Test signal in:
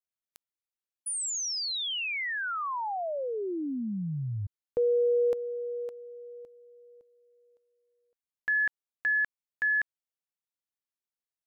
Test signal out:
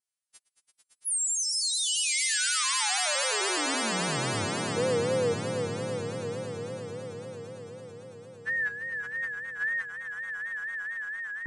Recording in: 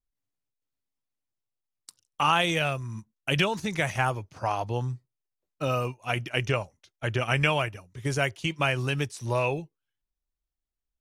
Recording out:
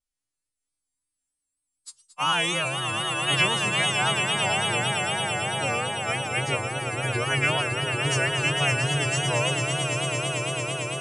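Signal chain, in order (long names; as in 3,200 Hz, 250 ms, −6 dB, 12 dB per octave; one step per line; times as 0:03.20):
every partial snapped to a pitch grid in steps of 2 semitones
on a send: echo that builds up and dies away 112 ms, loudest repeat 8, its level −7.5 dB
on the sum: tape wow and flutter 3.7 Hz 99 cents
level −2.5 dB
MP3 80 kbit/s 24,000 Hz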